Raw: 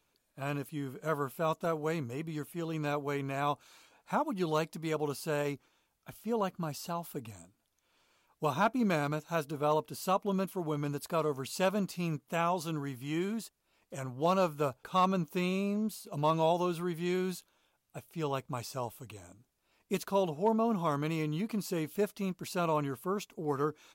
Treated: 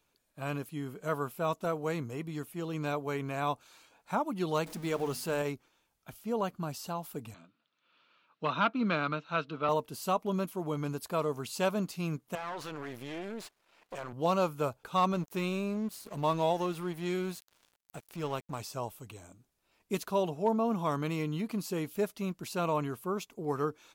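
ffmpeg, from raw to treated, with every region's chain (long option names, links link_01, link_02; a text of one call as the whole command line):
ffmpeg -i in.wav -filter_complex "[0:a]asettb=1/sr,asplit=3[link_01][link_02][link_03];[link_01]atrim=end=4.664[link_04];[link_02]atrim=start=4.66:end=5.42,asetpts=PTS-STARTPTS,afade=type=in:duration=0.004:curve=qsin,afade=type=out:start_time=0.756:duration=0.004:curve=qsin,aeval=exprs='val(0)+0.5*0.0075*sgn(val(0))':channel_layout=same,bandreject=frequency=50:width_type=h:width=6,bandreject=frequency=100:width_type=h:width=6,bandreject=frequency=150:width_type=h:width=6,bandreject=frequency=200:width_type=h:width=6,bandreject=frequency=250:width_type=h:width=6[link_05];[link_03]atrim=start=5.416[link_06];[link_04][link_05]acrossfade=duration=0.004:curve1=hsin:curve2=qsin[link_07];[link_07][link_06]acrossfade=duration=0.004:curve1=qsin:curve2=hsin,asettb=1/sr,asplit=3[link_08][link_09][link_10];[link_08]atrim=end=7.344[link_11];[link_09]atrim=start=7.34:end=9.69,asetpts=PTS-STARTPTS,afade=type=in:duration=0.004:curve=qsin,afade=type=out:start_time=2.346:duration=0.004:curve=qsin,asoftclip=type=hard:threshold=-22dB,highpass=frequency=150:width=0.5412,highpass=frequency=150:width=1.3066,equalizer=frequency=390:width_type=q:width=4:gain=-5,equalizer=frequency=780:width_type=q:width=4:gain=-6,equalizer=frequency=1300:width_type=q:width=4:gain=9,equalizer=frequency=2700:width_type=q:width=4:gain=6,equalizer=frequency=3900:width_type=q:width=4:gain=5,lowpass=frequency=4200:width=0.5412,lowpass=frequency=4200:width=1.3066[link_12];[link_10]atrim=start=9.686[link_13];[link_11][link_12]acrossfade=duration=0.004:curve1=hsin:curve2=qsin[link_14];[link_14][link_13]acrossfade=duration=0.004:curve1=qsin:curve2=hsin,asettb=1/sr,asplit=3[link_15][link_16][link_17];[link_15]atrim=end=12.354[link_18];[link_16]atrim=start=12.35:end=14.13,asetpts=PTS-STARTPTS,afade=type=in:duration=0.004:curve=qsin,afade=type=out:start_time=1.776:duration=0.004:curve=qsin,acompressor=threshold=-39dB:ratio=5:attack=3.2:release=140:knee=1:detection=peak,aeval=exprs='max(val(0),0)':channel_layout=same,asplit=2[link_19][link_20];[link_20]highpass=frequency=720:poles=1,volume=22dB,asoftclip=type=tanh:threshold=-27dB[link_21];[link_19][link_21]amix=inputs=2:normalize=0,lowpass=frequency=2200:poles=1,volume=-6dB[link_22];[link_17]atrim=start=14.126[link_23];[link_18][link_22]acrossfade=duration=0.004:curve1=hsin:curve2=qsin[link_24];[link_24][link_23]acrossfade=duration=0.004:curve1=qsin:curve2=hsin,asettb=1/sr,asplit=3[link_25][link_26][link_27];[link_25]atrim=end=15.134[link_28];[link_26]atrim=start=15.13:end=18.6,asetpts=PTS-STARTPTS,afade=type=in:duration=0.004:curve=qsin,afade=type=out:start_time=3.466:duration=0.004:curve=qsin,acompressor=mode=upward:threshold=-34dB:ratio=2.5:attack=3.2:release=140:knee=2.83:detection=peak,aeval=exprs='sgn(val(0))*max(abs(val(0))-0.00422,0)':channel_layout=same[link_29];[link_27]atrim=start=18.596[link_30];[link_28][link_29]acrossfade=duration=0.004:curve1=hsin:curve2=qsin[link_31];[link_31][link_30]acrossfade=duration=0.004:curve1=qsin:curve2=hsin" out.wav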